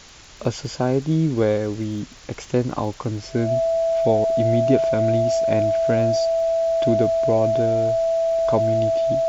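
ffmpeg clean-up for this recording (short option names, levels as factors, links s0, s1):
-af "adeclick=t=4,bandreject=f=660:w=30,afwtdn=0.0079"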